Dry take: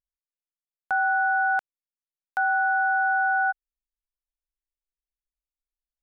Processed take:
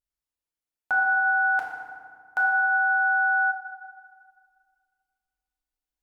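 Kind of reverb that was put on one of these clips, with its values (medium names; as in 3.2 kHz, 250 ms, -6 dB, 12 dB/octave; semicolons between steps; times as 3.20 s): FDN reverb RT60 1.9 s, low-frequency decay 1.4×, high-frequency decay 0.55×, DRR -2.5 dB; trim -1 dB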